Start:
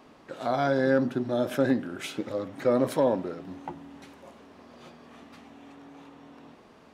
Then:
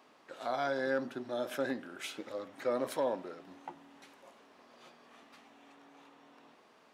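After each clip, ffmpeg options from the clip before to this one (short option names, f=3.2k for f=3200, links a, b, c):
-af "highpass=f=670:p=1,volume=-4.5dB"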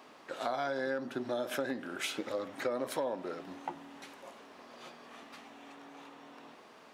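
-af "acompressor=threshold=-38dB:ratio=6,volume=7dB"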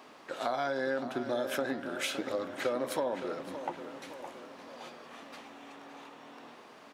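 -filter_complex "[0:a]asplit=2[a][b];[b]adelay=566,lowpass=f=4.7k:p=1,volume=-10.5dB,asplit=2[c][d];[d]adelay=566,lowpass=f=4.7k:p=1,volume=0.53,asplit=2[e][f];[f]adelay=566,lowpass=f=4.7k:p=1,volume=0.53,asplit=2[g][h];[h]adelay=566,lowpass=f=4.7k:p=1,volume=0.53,asplit=2[i][j];[j]adelay=566,lowpass=f=4.7k:p=1,volume=0.53,asplit=2[k][l];[l]adelay=566,lowpass=f=4.7k:p=1,volume=0.53[m];[a][c][e][g][i][k][m]amix=inputs=7:normalize=0,volume=2dB"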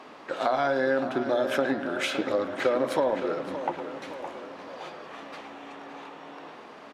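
-filter_complex "[0:a]aemphasis=mode=reproduction:type=50kf,bandreject=f=60:t=h:w=6,bandreject=f=120:t=h:w=6,bandreject=f=180:t=h:w=6,bandreject=f=240:t=h:w=6,asplit=2[a][b];[b]adelay=110,highpass=300,lowpass=3.4k,asoftclip=type=hard:threshold=-28.5dB,volume=-12dB[c];[a][c]amix=inputs=2:normalize=0,volume=7.5dB"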